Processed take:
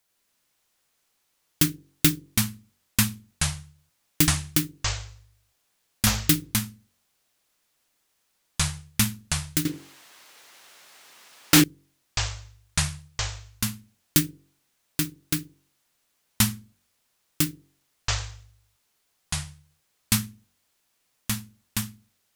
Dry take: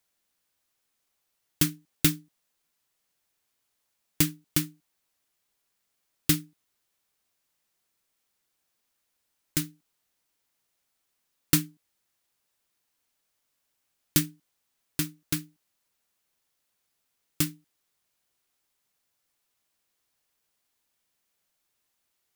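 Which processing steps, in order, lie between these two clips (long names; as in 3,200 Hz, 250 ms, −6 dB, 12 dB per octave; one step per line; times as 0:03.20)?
delay with pitch and tempo change per echo 94 ms, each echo −6 semitones, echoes 3
hum removal 46.78 Hz, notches 11
0:09.65–0:11.64: mid-hump overdrive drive 32 dB, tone 3,300 Hz, clips at −4.5 dBFS
level +3 dB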